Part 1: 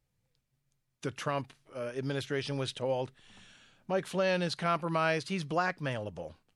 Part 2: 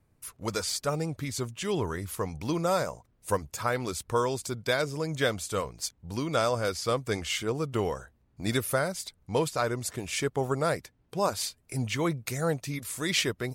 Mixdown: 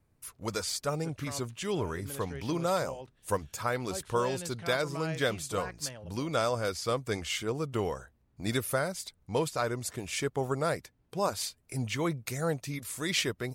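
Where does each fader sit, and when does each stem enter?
-10.5 dB, -2.5 dB; 0.00 s, 0.00 s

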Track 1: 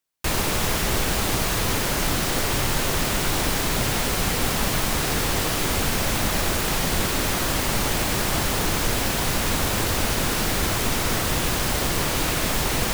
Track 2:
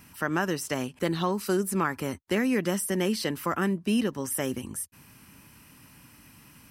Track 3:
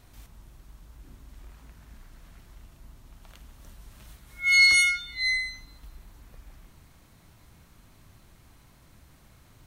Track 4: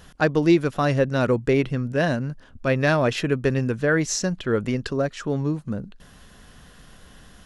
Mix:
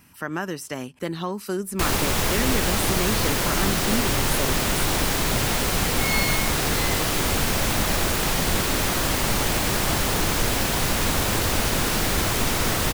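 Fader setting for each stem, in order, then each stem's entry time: +0.5 dB, -1.5 dB, -9.5 dB, mute; 1.55 s, 0.00 s, 1.55 s, mute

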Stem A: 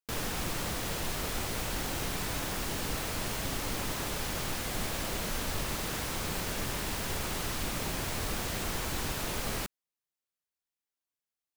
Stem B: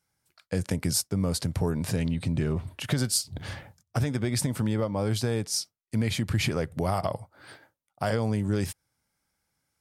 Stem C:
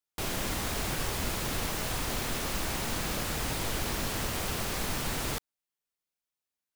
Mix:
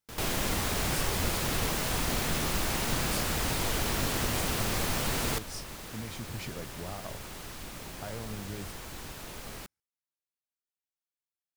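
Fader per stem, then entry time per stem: -8.5 dB, -14.0 dB, +2.0 dB; 0.00 s, 0.00 s, 0.00 s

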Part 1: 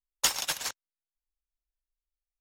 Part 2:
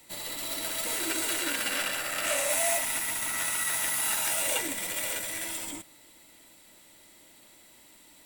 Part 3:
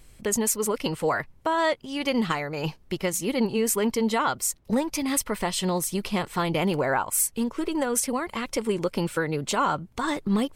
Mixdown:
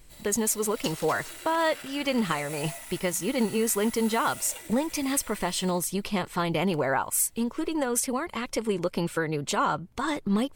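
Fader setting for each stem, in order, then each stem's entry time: -14.0 dB, -13.0 dB, -1.5 dB; 0.60 s, 0.00 s, 0.00 s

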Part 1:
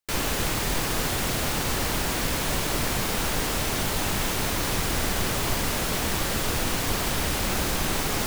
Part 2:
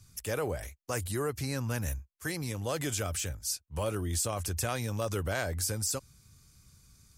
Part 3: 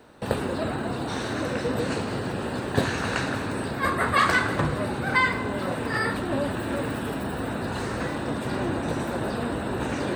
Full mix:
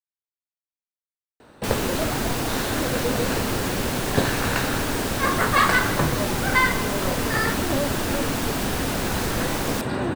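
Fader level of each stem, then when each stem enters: -2.0 dB, mute, +2.0 dB; 1.55 s, mute, 1.40 s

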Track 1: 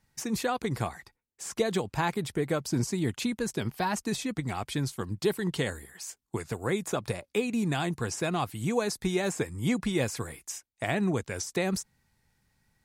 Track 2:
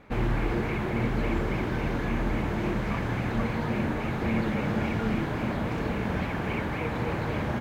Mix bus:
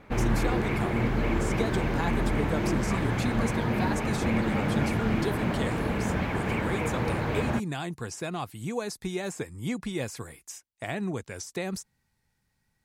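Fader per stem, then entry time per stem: -4.0 dB, +1.0 dB; 0.00 s, 0.00 s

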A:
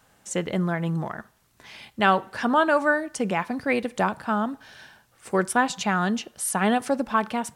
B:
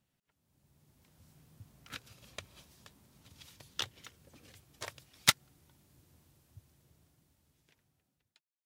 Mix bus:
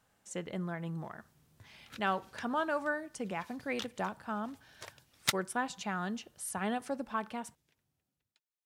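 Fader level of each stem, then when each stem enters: -12.5 dB, -5.5 dB; 0.00 s, 0.00 s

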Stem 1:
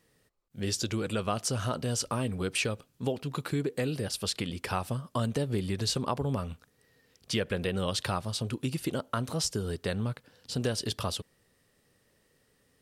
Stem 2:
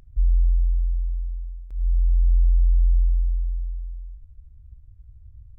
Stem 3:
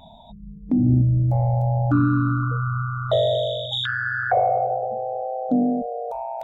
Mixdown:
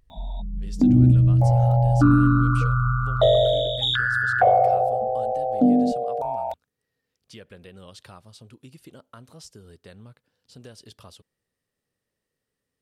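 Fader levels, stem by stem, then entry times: -14.5 dB, -13.0 dB, +2.5 dB; 0.00 s, 0.00 s, 0.10 s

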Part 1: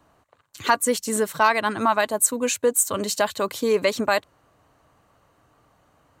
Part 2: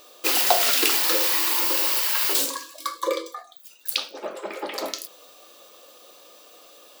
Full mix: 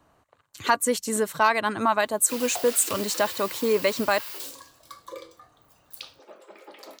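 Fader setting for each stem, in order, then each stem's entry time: -2.0 dB, -15.0 dB; 0.00 s, 2.05 s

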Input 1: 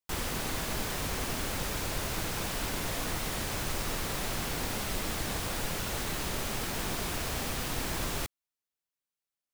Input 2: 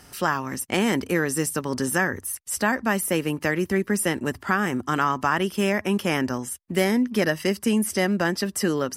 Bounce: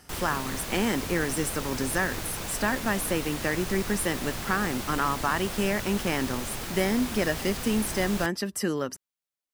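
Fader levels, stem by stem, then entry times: -1.0 dB, -4.5 dB; 0.00 s, 0.00 s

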